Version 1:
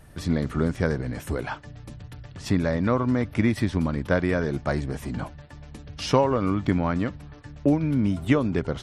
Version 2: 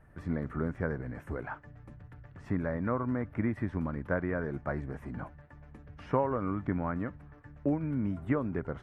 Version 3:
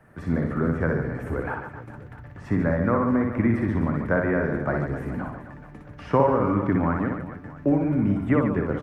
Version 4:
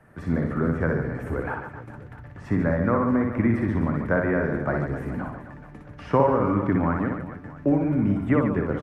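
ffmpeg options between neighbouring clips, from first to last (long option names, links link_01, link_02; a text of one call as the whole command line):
ffmpeg -i in.wav -filter_complex "[0:a]highshelf=frequency=2600:width_type=q:width=1.5:gain=-14,acrossover=split=2500[link_01][link_02];[link_02]acompressor=threshold=-52dB:ratio=4:attack=1:release=60[link_03];[link_01][link_03]amix=inputs=2:normalize=0,volume=-9dB" out.wav
ffmpeg -i in.wav -filter_complex "[0:a]acrossover=split=120|380|1500[link_01][link_02][link_03][link_04];[link_01]aeval=exprs='sgn(val(0))*max(abs(val(0))-0.00112,0)':channel_layout=same[link_05];[link_05][link_02][link_03][link_04]amix=inputs=4:normalize=0,aecho=1:1:60|144|261.6|426.2|656.7:0.631|0.398|0.251|0.158|0.1,volume=7.5dB" out.wav
ffmpeg -i in.wav -af "aresample=32000,aresample=44100" out.wav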